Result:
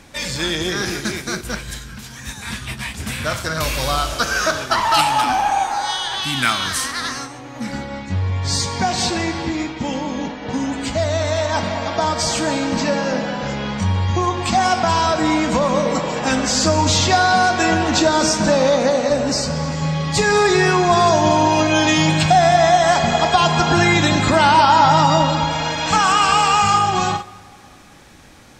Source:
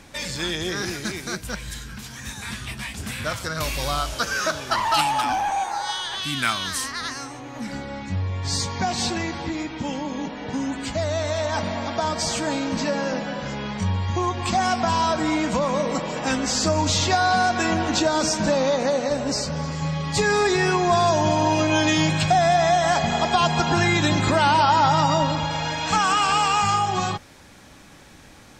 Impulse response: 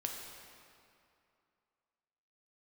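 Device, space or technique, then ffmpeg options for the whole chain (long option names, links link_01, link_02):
keyed gated reverb: -filter_complex "[0:a]asplit=3[link_01][link_02][link_03];[1:a]atrim=start_sample=2205[link_04];[link_02][link_04]afir=irnorm=-1:irlink=0[link_05];[link_03]apad=whole_len=1261022[link_06];[link_05][link_06]sidechaingate=range=-10dB:threshold=-32dB:ratio=16:detection=peak,volume=-1dB[link_07];[link_01][link_07]amix=inputs=2:normalize=0"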